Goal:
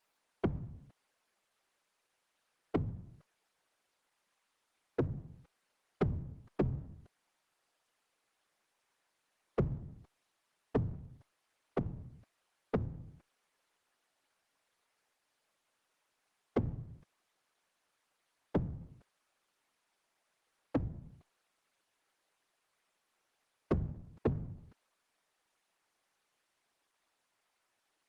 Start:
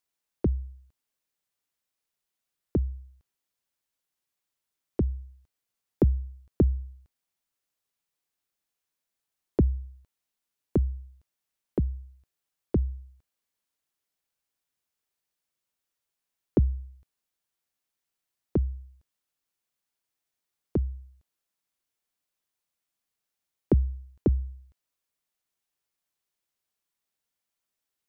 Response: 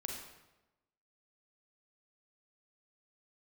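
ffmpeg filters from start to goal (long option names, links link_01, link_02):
-filter_complex "[0:a]asettb=1/sr,asplit=3[link_01][link_02][link_03];[link_01]atrim=end=16.794[link_04];[link_02]atrim=start=16.79:end=18.68,asetpts=PTS-STARTPTS,afade=type=in:duration=0.004:curve=qsin,afade=type=out:start_time=1.886:duration=0.004:curve=qsin,equalizer=frequency=120:width=4.4:gain=-5.5[link_05];[link_03]atrim=start=18.676[link_06];[link_04][link_05]acrossfade=duration=0.004:curve1=hsin:curve2=qsin[link_07];[link_07][link_06]acrossfade=duration=0.004:curve1=qsin:curve2=hsin,acompressor=threshold=-43dB:ratio=2,afftfilt=real='hypot(re,im)*cos(2*PI*random(0))':imag='hypot(re,im)*sin(2*PI*random(1))':win_size=512:overlap=0.75,asplit=2[link_08][link_09];[link_09]highpass=frequency=720:poles=1,volume=23dB,asoftclip=type=tanh:threshold=-26.5dB[link_10];[link_08][link_10]amix=inputs=2:normalize=0,lowpass=frequency=1400:poles=1,volume=-6dB,volume=7dB" -ar 48000 -c:a libopus -b:a 24k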